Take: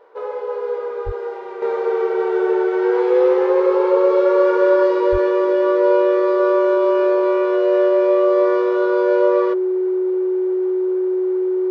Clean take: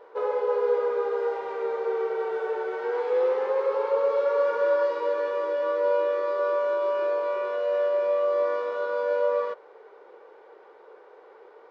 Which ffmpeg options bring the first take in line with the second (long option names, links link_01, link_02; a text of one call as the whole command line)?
ffmpeg -i in.wav -filter_complex "[0:a]bandreject=frequency=370:width=30,asplit=3[link_01][link_02][link_03];[link_01]afade=type=out:start_time=1.05:duration=0.02[link_04];[link_02]highpass=frequency=140:width=0.5412,highpass=frequency=140:width=1.3066,afade=type=in:start_time=1.05:duration=0.02,afade=type=out:start_time=1.17:duration=0.02[link_05];[link_03]afade=type=in:start_time=1.17:duration=0.02[link_06];[link_04][link_05][link_06]amix=inputs=3:normalize=0,asplit=3[link_07][link_08][link_09];[link_07]afade=type=out:start_time=5.11:duration=0.02[link_10];[link_08]highpass=frequency=140:width=0.5412,highpass=frequency=140:width=1.3066,afade=type=in:start_time=5.11:duration=0.02,afade=type=out:start_time=5.23:duration=0.02[link_11];[link_09]afade=type=in:start_time=5.23:duration=0.02[link_12];[link_10][link_11][link_12]amix=inputs=3:normalize=0,asetnsamples=nb_out_samples=441:pad=0,asendcmd='1.62 volume volume -7.5dB',volume=0dB" out.wav